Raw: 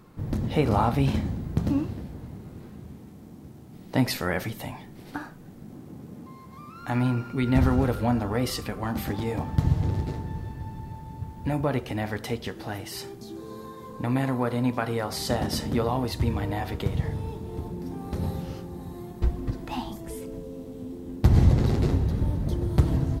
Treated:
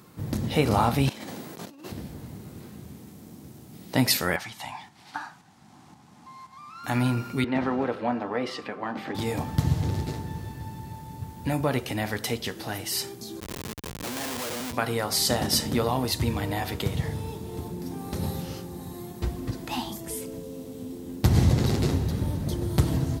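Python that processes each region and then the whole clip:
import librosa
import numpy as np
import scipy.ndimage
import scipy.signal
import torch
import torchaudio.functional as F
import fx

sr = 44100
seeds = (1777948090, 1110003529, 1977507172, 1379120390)

y = fx.chain(x, sr, fx.highpass(hz=380.0, slope=12),
    fx.over_compress(threshold_db=-42.0, ratio=-1.0), at=(1.09, 1.92))
y = fx.chain(y, sr, fx.lowpass(hz=6700.0, slope=12),
    fx.low_shelf_res(hz=640.0, db=-8.5, q=3.0),
    fx.tremolo_shape(shape='saw_up', hz=1.9, depth_pct=45), at=(4.36, 6.84))
y = fx.chain(y, sr, fx.bandpass_edges(low_hz=280.0, high_hz=2200.0),
    fx.notch(hz=1400.0, q=25.0), at=(7.44, 9.15))
y = fx.chain(y, sr, fx.highpass(hz=430.0, slope=12),
    fx.schmitt(flips_db=-37.5), at=(13.4, 14.73))
y = scipy.signal.sosfilt(scipy.signal.butter(2, 77.0, 'highpass', fs=sr, output='sos'), y)
y = fx.high_shelf(y, sr, hz=2900.0, db=11.0)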